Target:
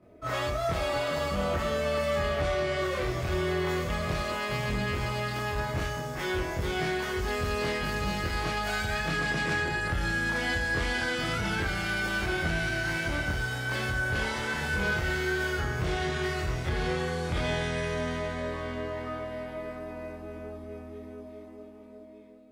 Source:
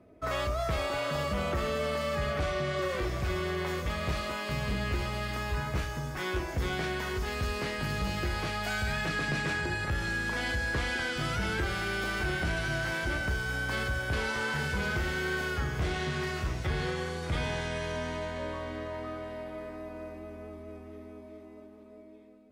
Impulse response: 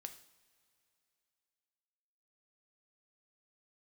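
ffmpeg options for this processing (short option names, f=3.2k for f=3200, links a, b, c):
-filter_complex "[0:a]acontrast=28,asoftclip=type=tanh:threshold=-18dB,asplit=2[a][b];[1:a]atrim=start_sample=2205,adelay=24[c];[b][c]afir=irnorm=-1:irlink=0,volume=10.5dB[d];[a][d]amix=inputs=2:normalize=0,volume=-9dB"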